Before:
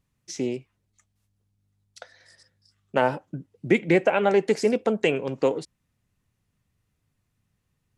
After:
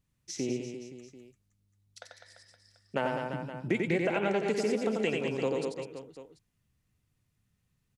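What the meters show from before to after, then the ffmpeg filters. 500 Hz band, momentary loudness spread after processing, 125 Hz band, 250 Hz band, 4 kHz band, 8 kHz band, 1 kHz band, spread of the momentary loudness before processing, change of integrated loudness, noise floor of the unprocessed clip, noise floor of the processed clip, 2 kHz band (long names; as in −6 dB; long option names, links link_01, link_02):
−7.5 dB, 19 LU, −4.5 dB, −6.0 dB, −4.5 dB, −2.5 dB, −8.0 dB, 16 LU, −8.0 dB, −76 dBFS, −77 dBFS, −6.0 dB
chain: -filter_complex "[0:a]equalizer=frequency=730:width=0.49:gain=-4,asplit=2[link_01][link_02];[link_02]aecho=0:1:90|202.5|343.1|518.9|738.6:0.631|0.398|0.251|0.158|0.1[link_03];[link_01][link_03]amix=inputs=2:normalize=0,acompressor=threshold=-25dB:ratio=2,volume=-3dB"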